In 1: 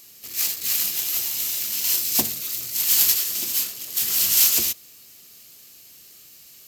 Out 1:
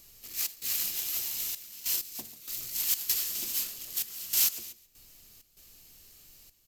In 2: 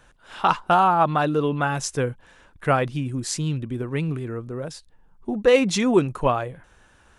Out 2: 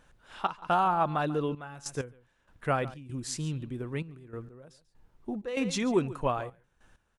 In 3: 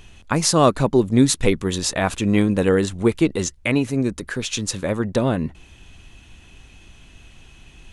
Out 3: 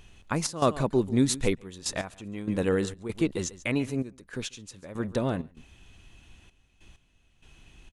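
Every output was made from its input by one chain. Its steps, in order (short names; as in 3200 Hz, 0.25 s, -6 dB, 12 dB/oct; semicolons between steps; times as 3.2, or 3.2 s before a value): echo 0.14 s -17 dB; added noise brown -55 dBFS; step gate "xxx.xxxxxx..x..." 97 bpm -12 dB; gain -8 dB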